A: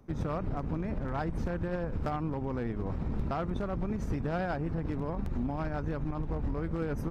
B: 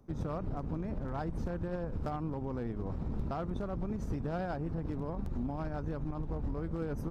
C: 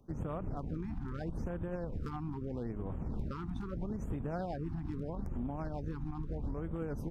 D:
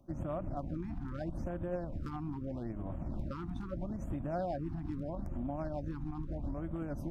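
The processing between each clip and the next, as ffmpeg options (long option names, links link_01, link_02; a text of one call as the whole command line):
ffmpeg -i in.wav -af "equalizer=frequency=2100:width_type=o:width=1.2:gain=-6,volume=-3dB" out.wav
ffmpeg -i in.wav -af "afftfilt=real='re*(1-between(b*sr/1024,470*pow(5300/470,0.5+0.5*sin(2*PI*0.78*pts/sr))/1.41,470*pow(5300/470,0.5+0.5*sin(2*PI*0.78*pts/sr))*1.41))':imag='im*(1-between(b*sr/1024,470*pow(5300/470,0.5+0.5*sin(2*PI*0.78*pts/sr))/1.41,470*pow(5300/470,0.5+0.5*sin(2*PI*0.78*pts/sr))*1.41))':win_size=1024:overlap=0.75,volume=-2dB" out.wav
ffmpeg -i in.wav -af "superequalizer=6b=1.41:7b=0.355:8b=2,areverse,acompressor=mode=upward:threshold=-38dB:ratio=2.5,areverse,volume=-1dB" out.wav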